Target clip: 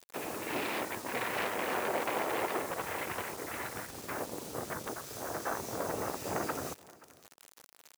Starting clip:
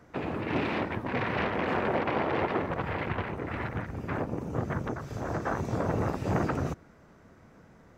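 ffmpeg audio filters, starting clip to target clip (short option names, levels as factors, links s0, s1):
-af "acrusher=bits=7:mix=0:aa=0.000001,bass=f=250:g=-14,treble=f=4000:g=11,aecho=1:1:527:0.0794,volume=0.668"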